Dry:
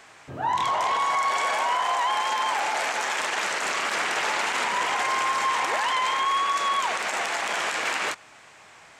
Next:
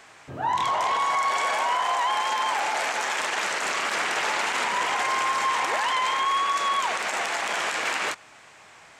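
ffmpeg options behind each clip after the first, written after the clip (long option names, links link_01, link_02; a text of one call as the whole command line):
ffmpeg -i in.wav -af anull out.wav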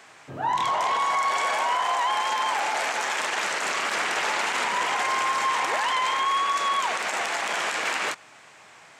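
ffmpeg -i in.wav -af "highpass=frequency=100:width=0.5412,highpass=frequency=100:width=1.3066" out.wav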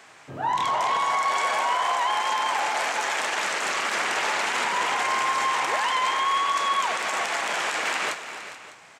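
ffmpeg -i in.wav -af "aecho=1:1:292|405|434|603:0.2|0.178|0.141|0.126" out.wav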